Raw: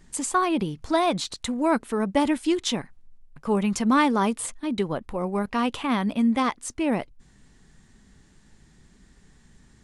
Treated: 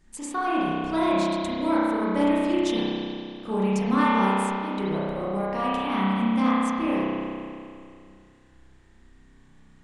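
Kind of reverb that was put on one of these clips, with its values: spring tank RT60 2.4 s, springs 31 ms, chirp 75 ms, DRR -9 dB; gain -9 dB

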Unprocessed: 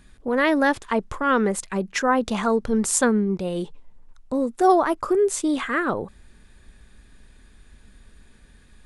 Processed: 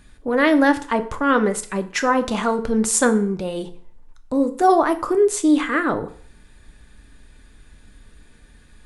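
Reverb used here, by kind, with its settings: FDN reverb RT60 0.5 s, low-frequency decay 0.9×, high-frequency decay 0.85×, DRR 7.5 dB; gain +2 dB

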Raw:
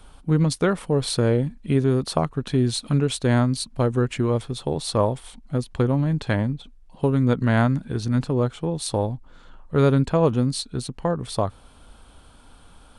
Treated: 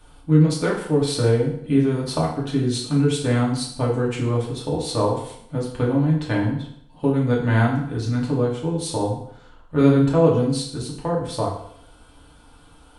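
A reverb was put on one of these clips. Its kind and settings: FDN reverb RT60 0.7 s, low-frequency decay 0.85×, high-frequency decay 0.85×, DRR -5 dB; gain -5.5 dB

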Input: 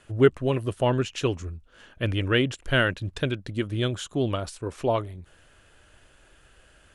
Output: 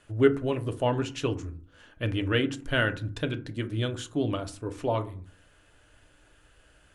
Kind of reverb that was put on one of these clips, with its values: FDN reverb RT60 0.42 s, low-frequency decay 1.5×, high-frequency decay 0.45×, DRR 7.5 dB; gain -4 dB

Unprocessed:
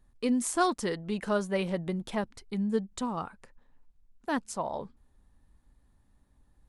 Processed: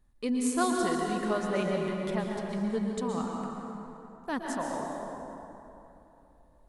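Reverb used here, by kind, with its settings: plate-style reverb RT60 3.2 s, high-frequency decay 0.55×, pre-delay 0.105 s, DRR -0.5 dB; gain -3 dB

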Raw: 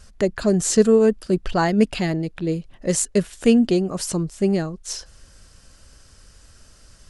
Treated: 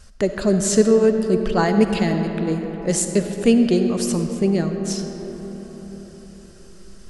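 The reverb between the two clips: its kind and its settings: digital reverb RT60 4.9 s, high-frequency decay 0.4×, pre-delay 20 ms, DRR 5.5 dB

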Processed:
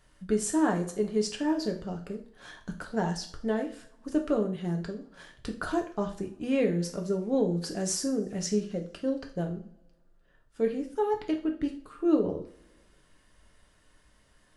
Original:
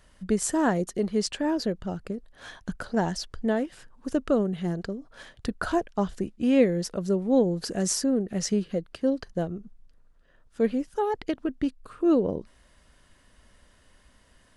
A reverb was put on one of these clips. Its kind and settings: two-slope reverb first 0.39 s, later 1.7 s, from -25 dB, DRR 2 dB; gain -5.5 dB

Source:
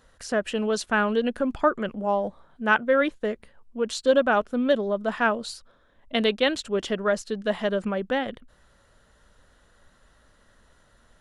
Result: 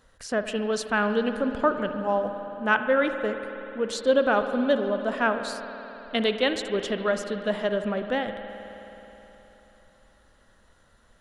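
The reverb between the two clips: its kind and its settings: spring tank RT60 3.7 s, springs 53 ms, chirp 30 ms, DRR 7.5 dB; gain -1.5 dB

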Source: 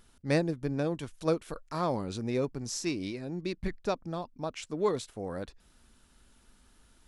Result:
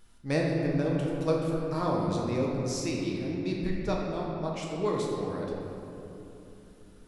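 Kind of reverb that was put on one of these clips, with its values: shoebox room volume 140 m³, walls hard, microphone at 0.57 m; gain -2.5 dB

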